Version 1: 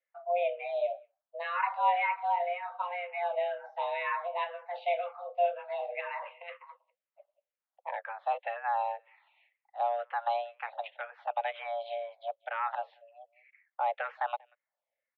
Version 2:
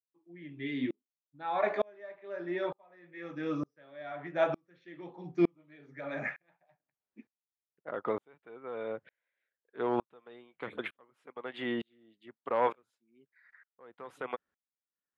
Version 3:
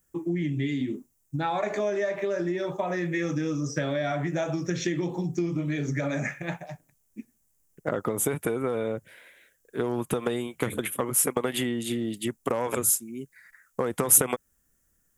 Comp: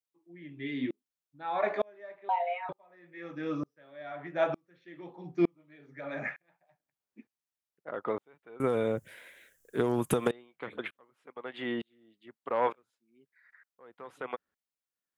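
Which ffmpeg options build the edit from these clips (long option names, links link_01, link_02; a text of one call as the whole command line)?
ffmpeg -i take0.wav -i take1.wav -i take2.wav -filter_complex "[1:a]asplit=3[link_01][link_02][link_03];[link_01]atrim=end=2.292[link_04];[0:a]atrim=start=2.288:end=2.692[link_05];[link_02]atrim=start=2.688:end=8.602[link_06];[2:a]atrim=start=8.598:end=10.312[link_07];[link_03]atrim=start=10.308[link_08];[link_04][link_05]acrossfade=duration=0.004:curve1=hsin:curve2=hsin[link_09];[link_09][link_06]acrossfade=duration=0.004:curve1=hsin:curve2=hsin[link_10];[link_10][link_07]acrossfade=duration=0.004:curve1=hsin:curve2=hsin[link_11];[link_11][link_08]acrossfade=duration=0.004:curve1=hsin:curve2=hsin" out.wav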